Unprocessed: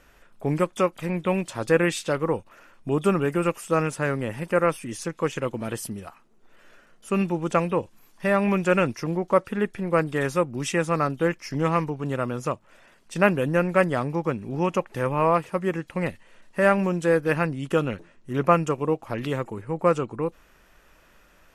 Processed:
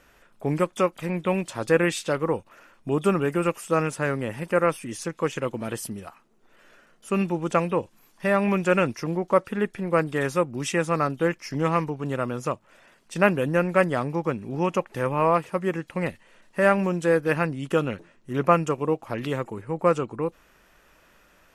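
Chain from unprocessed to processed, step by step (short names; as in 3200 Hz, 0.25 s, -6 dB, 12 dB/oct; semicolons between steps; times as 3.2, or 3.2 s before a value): low shelf 64 Hz -7 dB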